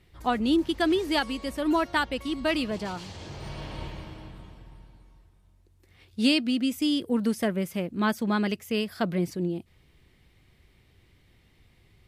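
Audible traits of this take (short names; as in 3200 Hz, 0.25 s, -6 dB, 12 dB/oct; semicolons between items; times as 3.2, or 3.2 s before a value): noise floor -62 dBFS; spectral tilt -3.5 dB/oct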